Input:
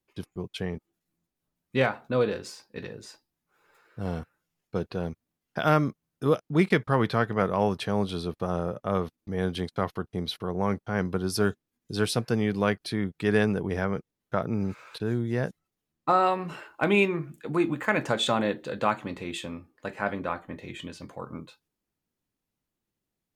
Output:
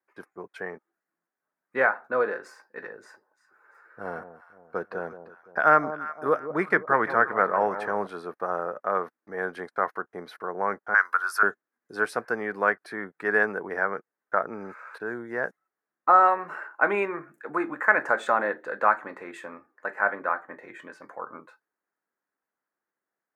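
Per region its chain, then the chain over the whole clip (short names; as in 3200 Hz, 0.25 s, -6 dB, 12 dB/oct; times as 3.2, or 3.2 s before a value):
2.99–8.07 low shelf 150 Hz +6 dB + echo with dull and thin repeats by turns 0.172 s, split 950 Hz, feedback 62%, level -11 dB
10.94–11.43 resonant high-pass 1300 Hz, resonance Q 2.7 + high shelf 6000 Hz +8.5 dB + three-band squash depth 40%
whole clip: HPF 490 Hz 12 dB/oct; resonant high shelf 2300 Hz -12 dB, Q 3; gain +2 dB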